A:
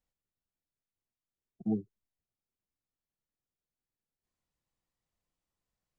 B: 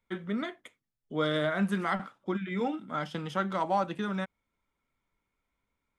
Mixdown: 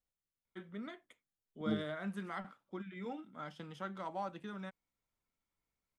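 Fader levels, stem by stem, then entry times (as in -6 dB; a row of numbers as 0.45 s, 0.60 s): -5.0 dB, -12.5 dB; 0.00 s, 0.45 s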